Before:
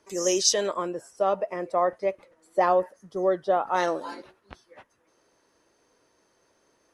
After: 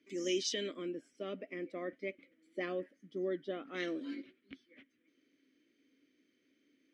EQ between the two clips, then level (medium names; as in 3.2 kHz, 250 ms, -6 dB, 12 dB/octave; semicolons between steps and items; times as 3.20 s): vowel filter i; +7.0 dB